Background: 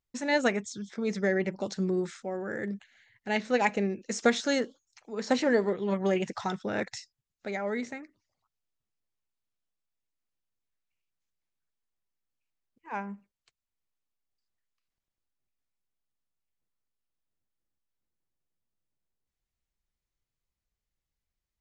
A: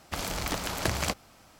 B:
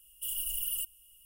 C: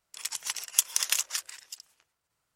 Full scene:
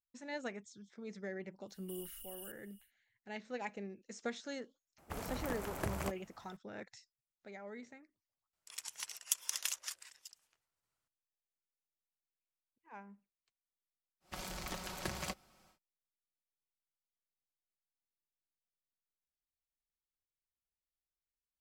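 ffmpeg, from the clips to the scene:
-filter_complex "[1:a]asplit=2[s0][s1];[0:a]volume=0.15[s2];[2:a]acompressor=threshold=0.0158:ratio=6:attack=0.15:release=30:knee=1:detection=rms[s3];[s0]equalizer=f=4400:t=o:w=1.7:g=-13[s4];[s1]aecho=1:1:5.4:0.56[s5];[s3]atrim=end=1.25,asetpts=PTS-STARTPTS,volume=0.376,afade=t=in:d=0.1,afade=t=out:st=1.15:d=0.1,adelay=1670[s6];[s4]atrim=end=1.59,asetpts=PTS-STARTPTS,volume=0.398,afade=t=in:d=0.004:c=hsin,afade=t=out:st=1.586:d=0.004:c=hsin,adelay=4980[s7];[3:a]atrim=end=2.55,asetpts=PTS-STARTPTS,volume=0.282,afade=t=in:d=0.004:c=hsin,afade=t=out:st=2.546:d=0.004:c=hsin,adelay=8530[s8];[s5]atrim=end=1.59,asetpts=PTS-STARTPTS,volume=0.237,afade=t=in:d=0.1,afade=t=out:st=1.49:d=0.1,adelay=14200[s9];[s2][s6][s7][s8][s9]amix=inputs=5:normalize=0"

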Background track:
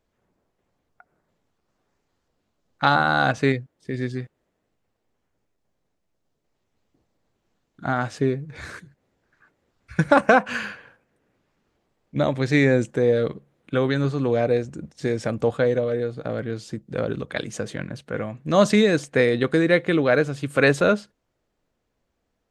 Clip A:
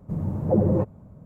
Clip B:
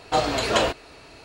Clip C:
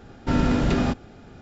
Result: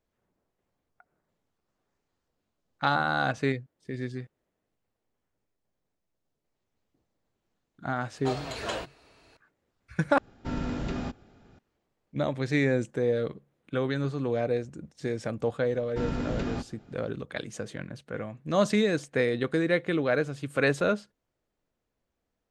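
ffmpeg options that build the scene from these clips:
-filter_complex "[3:a]asplit=2[s0][s1];[0:a]volume=0.447,asplit=2[s2][s3];[s2]atrim=end=10.184[s4];[s0]atrim=end=1.41,asetpts=PTS-STARTPTS,volume=0.282[s5];[s3]atrim=start=11.586[s6];[2:a]atrim=end=1.24,asetpts=PTS-STARTPTS,volume=0.237,afade=t=in:d=0.004:c=hsin,afade=t=out:st=1.236:d=0.004:c=hsin,adelay=8130[s7];[s1]atrim=end=1.41,asetpts=PTS-STARTPTS,volume=0.299,afade=t=in:d=0.004:c=hsin,afade=t=out:st=1.406:d=0.004:c=hsin,adelay=15690[s8];[s4][s5]acrossfade=d=0.004:c1=hsin:c2=hsin[s9];[s9][s6]acrossfade=d=0.004:c1=hsin:c2=hsin[s10];[s10][s7][s8]amix=inputs=3:normalize=0"

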